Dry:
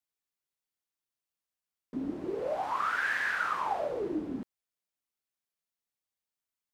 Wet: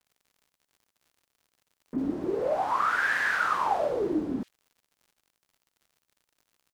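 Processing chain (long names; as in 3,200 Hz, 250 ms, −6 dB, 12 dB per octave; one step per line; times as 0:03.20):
multiband delay without the direct sound lows, highs 50 ms, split 2,500 Hz
surface crackle 100 per second −57 dBFS
level +5.5 dB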